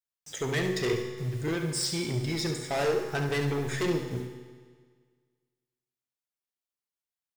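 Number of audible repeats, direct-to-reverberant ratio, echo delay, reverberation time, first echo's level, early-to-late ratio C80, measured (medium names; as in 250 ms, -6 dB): 1, 3.5 dB, 70 ms, 1.7 s, -8.5 dB, 8.0 dB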